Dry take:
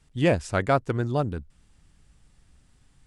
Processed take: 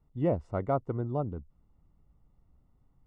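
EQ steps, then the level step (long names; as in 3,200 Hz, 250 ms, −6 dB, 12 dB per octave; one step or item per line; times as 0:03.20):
Savitzky-Golay smoothing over 65 samples
−6.0 dB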